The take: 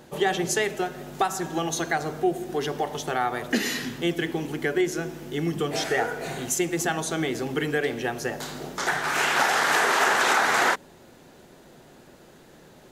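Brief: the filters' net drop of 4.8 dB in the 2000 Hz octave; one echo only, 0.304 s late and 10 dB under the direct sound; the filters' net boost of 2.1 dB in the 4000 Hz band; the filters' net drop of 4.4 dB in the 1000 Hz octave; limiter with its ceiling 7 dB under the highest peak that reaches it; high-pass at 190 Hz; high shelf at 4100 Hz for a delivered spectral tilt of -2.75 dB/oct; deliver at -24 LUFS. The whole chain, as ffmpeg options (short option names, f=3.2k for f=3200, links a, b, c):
-af "highpass=190,equalizer=f=1k:t=o:g=-5,equalizer=f=2k:t=o:g=-5,equalizer=f=4k:t=o:g=7,highshelf=f=4.1k:g=-4,alimiter=limit=-17.5dB:level=0:latency=1,aecho=1:1:304:0.316,volume=4.5dB"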